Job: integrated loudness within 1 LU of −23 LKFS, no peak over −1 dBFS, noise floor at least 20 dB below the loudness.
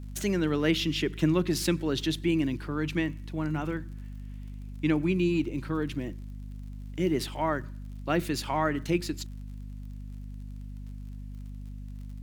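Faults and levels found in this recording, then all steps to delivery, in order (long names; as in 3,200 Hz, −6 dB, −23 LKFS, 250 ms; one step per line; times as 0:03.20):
crackle rate 46 per second; mains hum 50 Hz; hum harmonics up to 250 Hz; level of the hum −37 dBFS; integrated loudness −29.0 LKFS; sample peak −12.5 dBFS; target loudness −23.0 LKFS
→ click removal
hum removal 50 Hz, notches 5
level +6 dB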